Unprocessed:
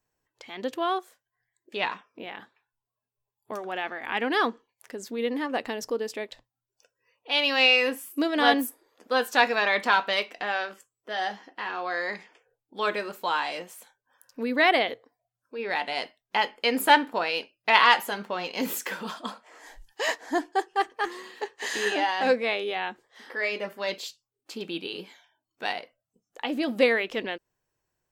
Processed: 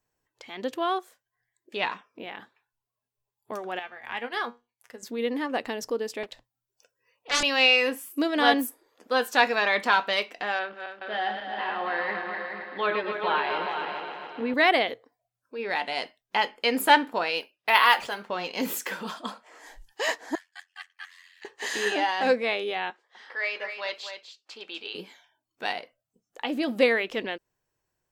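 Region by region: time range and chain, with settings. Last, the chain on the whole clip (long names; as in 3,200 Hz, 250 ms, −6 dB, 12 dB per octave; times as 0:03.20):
0:03.79–0:05.03: parametric band 300 Hz −15 dB 0.45 octaves + tuned comb filter 120 Hz, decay 0.25 s, mix 70% + transient designer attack +4 dB, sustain −4 dB
0:06.23–0:07.43: high-shelf EQ 11,000 Hz +5.5 dB + highs frequency-modulated by the lows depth 0.7 ms
0:10.59–0:14.54: feedback delay that plays each chunk backwards 136 ms, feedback 73%, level −6 dB + low-pass filter 3,600 Hz 24 dB per octave + single-tap delay 422 ms −7.5 dB
0:17.40–0:18.30: high-pass filter 430 Hz 6 dB per octave + linearly interpolated sample-rate reduction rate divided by 3×
0:20.35–0:21.45: four-pole ladder high-pass 1,600 Hz, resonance 35% + ring modulation 44 Hz
0:22.90–0:24.95: band-pass filter 690–5,100 Hz + single-tap delay 248 ms −8 dB
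whole clip: no processing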